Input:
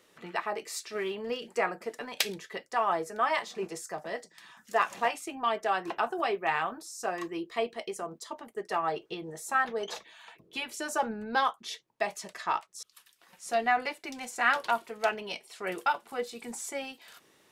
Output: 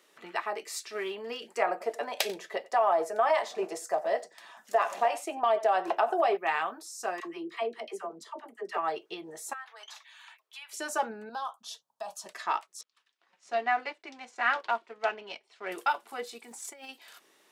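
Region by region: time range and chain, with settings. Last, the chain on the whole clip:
1.62–6.37 s: peaking EQ 630 Hz +12.5 dB 0.98 oct + delay 92 ms -22 dB + compression 4:1, threshold -20 dBFS
7.20–8.78 s: treble shelf 3.7 kHz -8.5 dB + phase dispersion lows, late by 64 ms, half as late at 590 Hz
9.53–10.73 s: high-pass 930 Hz 24 dB/octave + compression 3:1, threshold -45 dBFS
11.29–12.26 s: compression 3:1, threshold -31 dBFS + static phaser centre 870 Hz, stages 4
12.81–15.71 s: companding laws mixed up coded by A + distance through air 130 m
16.38–16.89 s: gate -39 dBFS, range -9 dB + modulation noise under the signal 32 dB + compressor with a negative ratio -44 dBFS
whole clip: high-pass 320 Hz 12 dB/octave; band-stop 500 Hz, Q 12

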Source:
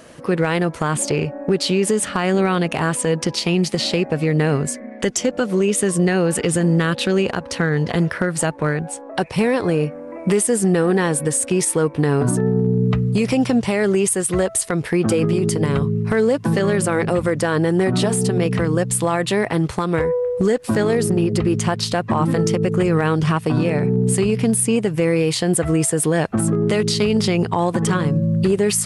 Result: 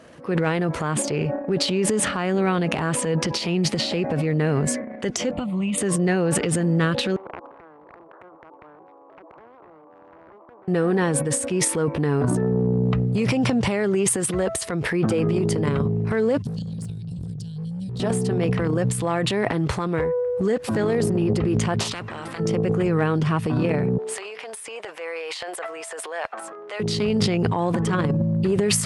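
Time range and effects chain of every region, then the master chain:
5.33–5.78 s: low-pass 11 kHz 24 dB/octave + bass shelf 150 Hz +10.5 dB + static phaser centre 1.6 kHz, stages 6
7.16–10.68 s: Chebyshev band-pass 310–1100 Hz, order 5 + compression 16:1, threshold -31 dBFS + spectrum-flattening compressor 4:1
16.42–18.00 s: inverse Chebyshev band-stop 290–2100 Hz + treble shelf 3.1 kHz -9.5 dB + hard clipper -23 dBFS
21.80–22.40 s: FFT filter 280 Hz 0 dB, 710 Hz -3 dB, 1.6 kHz -17 dB, 7.8 kHz -18 dB, 12 kHz -21 dB + spectrum-flattening compressor 10:1
23.98–26.80 s: high-pass 620 Hz 24 dB/octave + treble shelf 6.1 kHz -9.5 dB
whole clip: low-pass 3.4 kHz 6 dB/octave; transient shaper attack -3 dB, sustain +11 dB; high-pass 47 Hz; trim -4 dB

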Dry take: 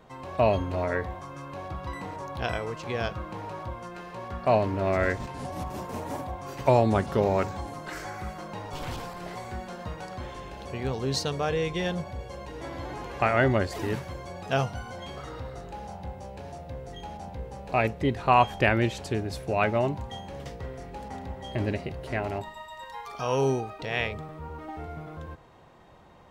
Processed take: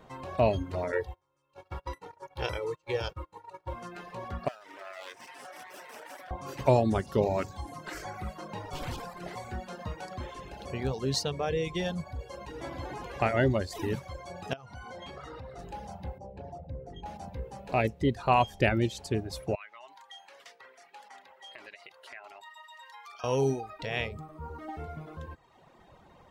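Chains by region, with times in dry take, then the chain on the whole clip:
0.92–3.73 s: gate -36 dBFS, range -24 dB + bass shelf 250 Hz -6 dB + comb 2.2 ms, depth 80%
4.48–6.31 s: comb filter that takes the minimum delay 0.36 ms + high-pass 690 Hz + compression 3:1, threshold -40 dBFS
14.53–15.59 s: low-pass 3.9 kHz 6 dB/octave + bass shelf 330 Hz -4.5 dB + compression 10:1, threshold -36 dBFS
16.18–17.06 s: resonances exaggerated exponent 1.5 + tape noise reduction on one side only decoder only
19.55–23.24 s: high-pass 1.2 kHz + treble shelf 6.7 kHz -6.5 dB + compression 3:1, threshold -43 dBFS
whole clip: reverb removal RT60 1 s; dynamic bell 1.4 kHz, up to -6 dB, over -40 dBFS, Q 0.87

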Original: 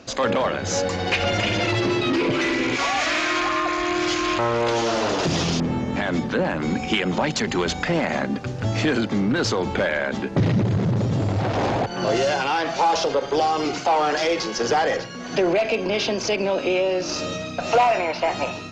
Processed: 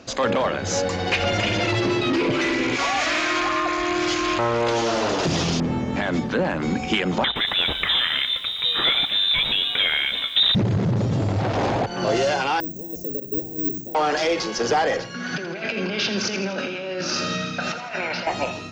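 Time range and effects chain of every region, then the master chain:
7.24–10.55 s: treble shelf 3 kHz +6.5 dB + frequency inversion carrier 3.8 kHz + bit-crushed delay 117 ms, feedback 55%, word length 7-bit, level -13 dB
12.60–13.95 s: inverse Chebyshev band-stop 1.1–3.1 kHz, stop band 70 dB + careless resampling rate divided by 2×, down none, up zero stuff
15.14–18.27 s: compressor with a negative ratio -25 dBFS + cabinet simulation 130–6300 Hz, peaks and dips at 200 Hz +5 dB, 310 Hz -7 dB, 470 Hz -5 dB, 660 Hz -8 dB, 1 kHz -6 dB, 1.5 kHz +9 dB + feedback delay 83 ms, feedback 59%, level -10 dB
whole clip: none

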